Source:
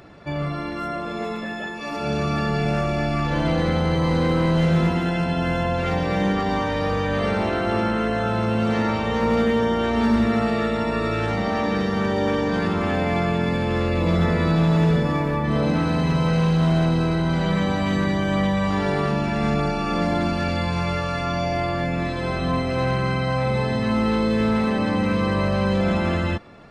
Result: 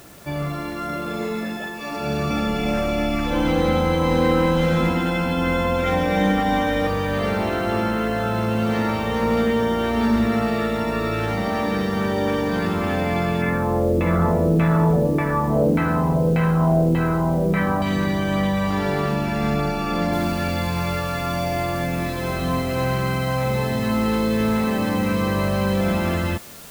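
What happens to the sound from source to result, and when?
0.85–1.57 doubler 41 ms -4.5 dB
2.3–6.87 comb 3.8 ms, depth 83%
13.42–17.82 LFO low-pass saw down 1.7 Hz 380–2300 Hz
20.13 noise floor step -49 dB -42 dB

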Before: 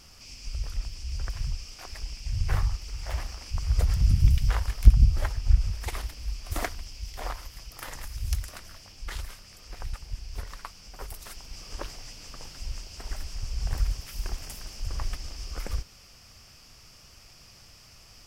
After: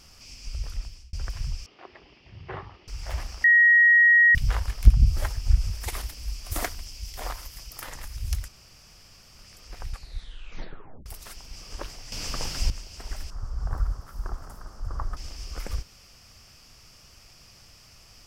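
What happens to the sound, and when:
0.62–1.13 fade out equal-power
1.66–2.88 speaker cabinet 210–3000 Hz, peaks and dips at 370 Hz +9 dB, 1500 Hz -5 dB, 2400 Hz -6 dB
3.44–4.35 bleep 1890 Hz -13 dBFS
5.06–7.82 high shelf 6400 Hz +8.5 dB
8.48–9.39 room tone
9.9 tape stop 1.16 s
12.12–12.7 gain +11.5 dB
13.3–15.17 resonant high shelf 1800 Hz -11.5 dB, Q 3

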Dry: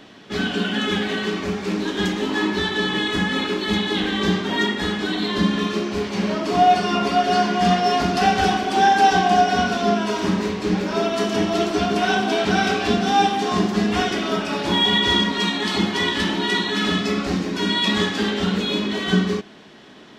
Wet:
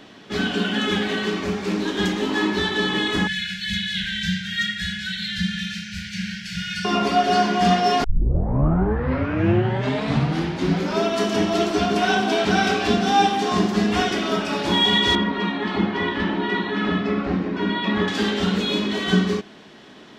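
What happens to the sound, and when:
3.27–6.85 brick-wall FIR band-stop 200–1400 Hz
8.04 tape start 2.98 s
15.15–18.08 LPF 2000 Hz

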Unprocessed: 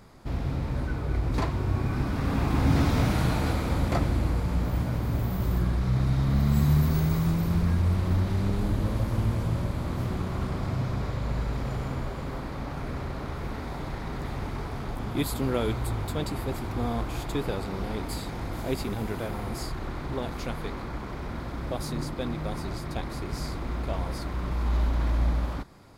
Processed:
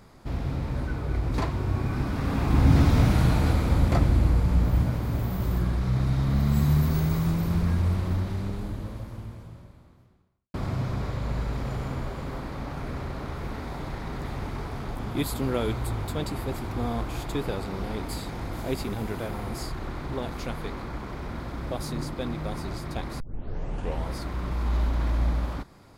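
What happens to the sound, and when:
2.48–4.91 low shelf 170 Hz +6.5 dB
7.85–10.54 fade out quadratic
23.2 tape start 0.89 s

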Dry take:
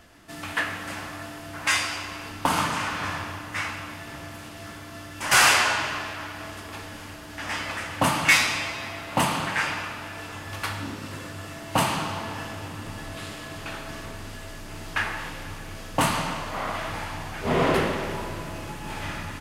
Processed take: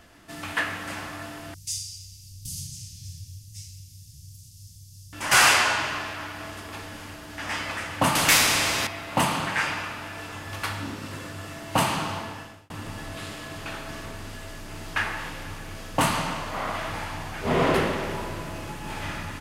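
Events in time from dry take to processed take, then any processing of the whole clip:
1.54–5.13 elliptic band-stop 120–5400 Hz, stop band 80 dB
8.15–8.87 spectral compressor 2:1
12.14–12.7 fade out

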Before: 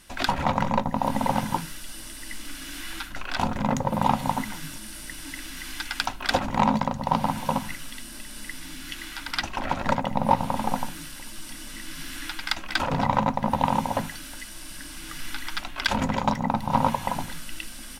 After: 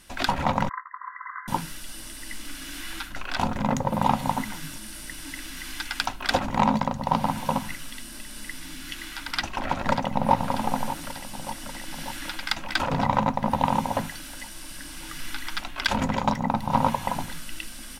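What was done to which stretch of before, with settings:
0.69–1.48 brick-wall FIR band-pass 1000–2100 Hz
9.28–10.35 echo throw 0.59 s, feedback 70%, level -12 dB

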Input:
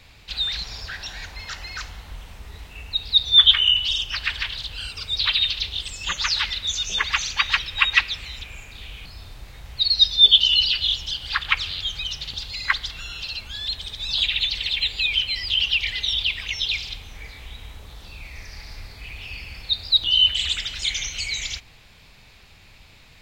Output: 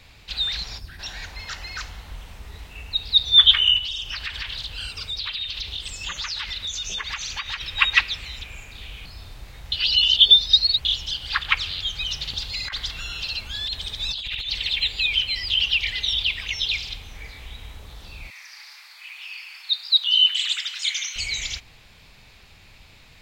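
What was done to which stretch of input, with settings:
0.78–0.99 spectral gain 390–8000 Hz -12 dB
3.78–7.61 compressor, threshold -26 dBFS
9.72–10.85 reverse
12–14.5 negative-ratio compressor -28 dBFS
18.3–21.16 HPF 1000 Hz 24 dB/oct

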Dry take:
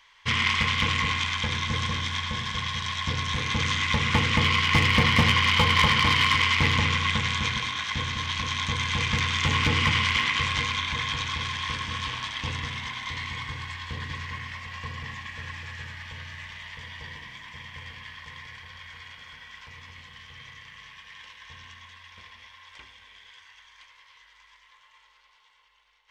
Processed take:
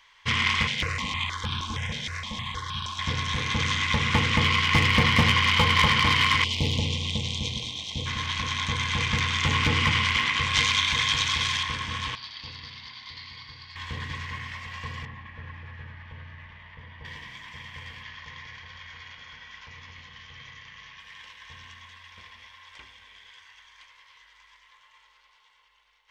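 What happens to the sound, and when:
0.67–2.99 step phaser 6.4 Hz 310–2000 Hz
6.44–8.06 Chebyshev band-stop 650–3300 Hz
10.53–11.63 high shelf 2500 Hz +10.5 dB
12.15–13.76 ladder low-pass 4800 Hz, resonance 85%
15.05–17.05 tape spacing loss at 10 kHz 38 dB
18.03–21 steep low-pass 7000 Hz 96 dB/oct

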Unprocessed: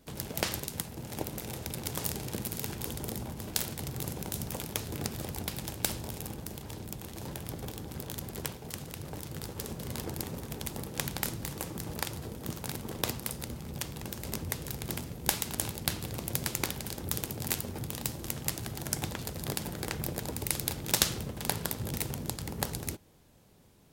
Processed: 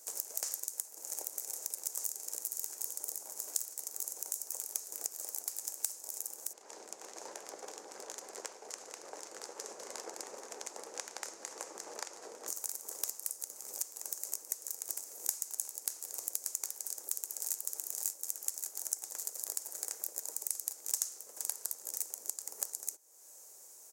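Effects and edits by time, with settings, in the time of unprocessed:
6.53–12.48 LPF 3200 Hz
16.75–17.57 echo throw 0.56 s, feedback 50%, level -1.5 dB
whole clip: HPF 450 Hz 24 dB/oct; resonant high shelf 4800 Hz +13 dB, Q 3; compressor 3:1, threshold -39 dBFS

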